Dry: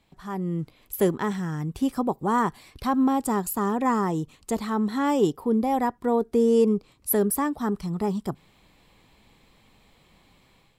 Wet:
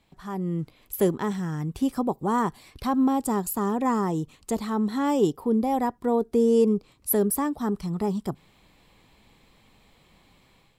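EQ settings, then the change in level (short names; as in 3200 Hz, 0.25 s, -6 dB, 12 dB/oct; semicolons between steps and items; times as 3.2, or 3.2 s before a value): dynamic EQ 1700 Hz, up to -4 dB, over -39 dBFS, Q 0.91; 0.0 dB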